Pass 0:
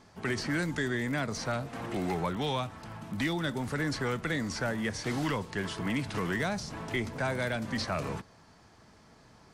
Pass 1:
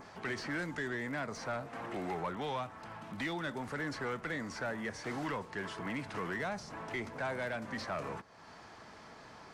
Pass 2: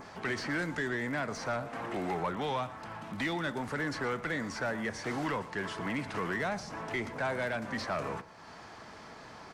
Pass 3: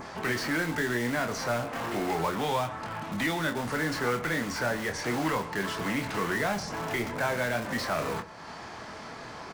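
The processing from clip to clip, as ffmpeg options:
-filter_complex "[0:a]adynamicequalizer=threshold=0.00224:dfrequency=3600:dqfactor=1.1:tfrequency=3600:tqfactor=1.1:attack=5:release=100:ratio=0.375:range=3:mode=cutabove:tftype=bell,asplit=2[s0][s1];[s1]highpass=f=720:p=1,volume=4.47,asoftclip=type=tanh:threshold=0.1[s2];[s0][s2]amix=inputs=2:normalize=0,lowpass=f=2500:p=1,volume=0.501,acompressor=mode=upward:threshold=0.0158:ratio=2.5,volume=0.447"
-af "aecho=1:1:117:0.141,volume=1.58"
-filter_complex "[0:a]asplit=2[s0][s1];[s1]aeval=exprs='(mod(53.1*val(0)+1,2)-1)/53.1':c=same,volume=0.376[s2];[s0][s2]amix=inputs=2:normalize=0,asplit=2[s3][s4];[s4]adelay=25,volume=0.473[s5];[s3][s5]amix=inputs=2:normalize=0,volume=1.5"

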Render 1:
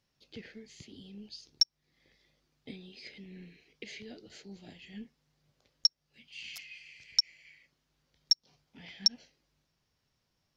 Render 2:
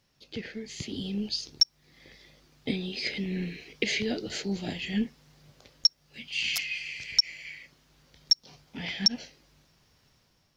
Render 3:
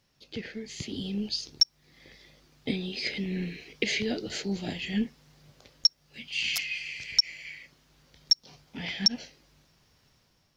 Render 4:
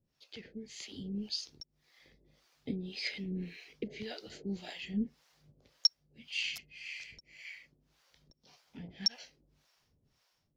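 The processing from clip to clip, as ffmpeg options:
-af "dynaudnorm=f=530:g=3:m=2.82,alimiter=level_in=6.31:limit=0.891:release=50:level=0:latency=1,volume=0.398"
-af anull
-filter_complex "[0:a]acrossover=split=530[s0][s1];[s0]aeval=exprs='val(0)*(1-1/2+1/2*cos(2*PI*1.8*n/s))':c=same[s2];[s1]aeval=exprs='val(0)*(1-1/2-1/2*cos(2*PI*1.8*n/s))':c=same[s3];[s2][s3]amix=inputs=2:normalize=0,volume=0.596"

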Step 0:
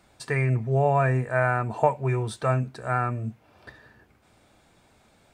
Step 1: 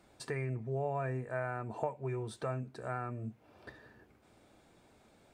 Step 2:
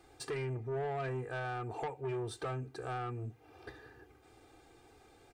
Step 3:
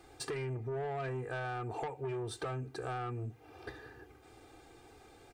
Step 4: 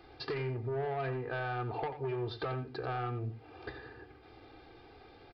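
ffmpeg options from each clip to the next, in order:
-af "equalizer=f=360:w=0.79:g=6,acompressor=threshold=0.02:ratio=2,volume=0.473"
-af "aecho=1:1:2.5:0.83,asoftclip=type=tanh:threshold=0.0211,volume=1.12"
-af "acompressor=threshold=0.0112:ratio=6,volume=1.5"
-af "acrusher=bits=11:mix=0:aa=0.000001,aecho=1:1:89:0.266,aresample=11025,aresample=44100,volume=1.26"

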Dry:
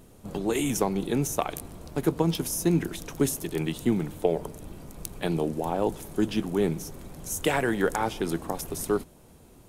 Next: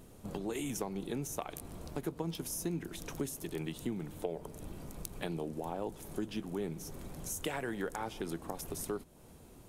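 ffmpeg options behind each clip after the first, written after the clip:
-af "acompressor=threshold=0.0158:ratio=2.5,volume=0.75"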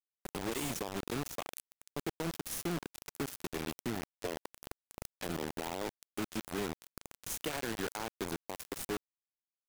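-af "asoftclip=type=tanh:threshold=0.0335,acrusher=bits=5:mix=0:aa=0.000001"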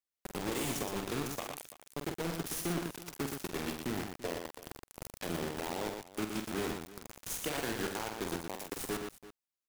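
-af "aecho=1:1:47|119|336:0.447|0.531|0.15"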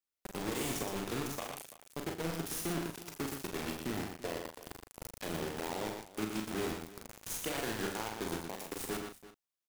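-filter_complex "[0:a]asplit=2[s0][s1];[s1]adelay=37,volume=0.447[s2];[s0][s2]amix=inputs=2:normalize=0,volume=0.841"

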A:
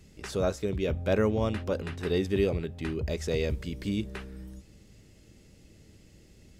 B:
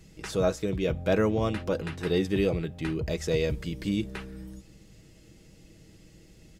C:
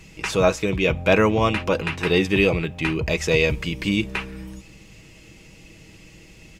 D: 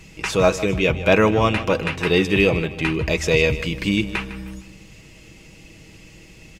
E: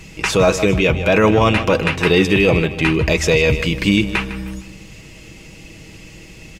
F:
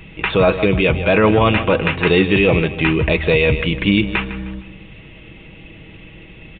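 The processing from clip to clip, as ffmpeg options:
-af "aecho=1:1:6.2:0.4,volume=1.19"
-af "equalizer=f=1000:t=o:w=0.67:g=8,equalizer=f=2500:t=o:w=0.67:g=12,equalizer=f=6300:t=o:w=0.67:g=3,volume=1.88"
-af "aecho=1:1:155|310|465:0.188|0.0697|0.0258,volume=1.19"
-af "alimiter=limit=0.299:level=0:latency=1:release=11,volume=2"
-af "aresample=8000,aresample=44100"

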